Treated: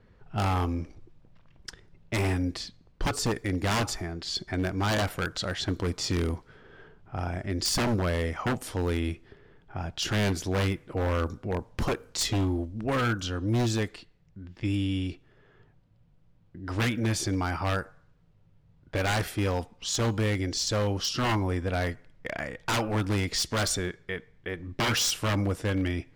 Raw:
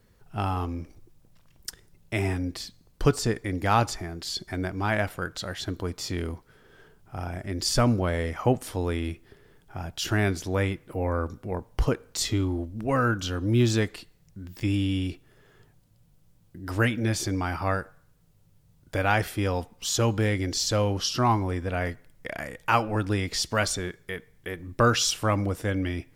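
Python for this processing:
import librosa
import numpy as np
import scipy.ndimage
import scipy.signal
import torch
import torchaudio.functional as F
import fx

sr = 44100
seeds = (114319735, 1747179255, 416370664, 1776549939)

y = fx.rider(x, sr, range_db=4, speed_s=2.0)
y = fx.env_lowpass(y, sr, base_hz=2700.0, full_db=-22.5)
y = 10.0 ** (-20.5 / 20.0) * (np.abs((y / 10.0 ** (-20.5 / 20.0) + 3.0) % 4.0 - 2.0) - 1.0)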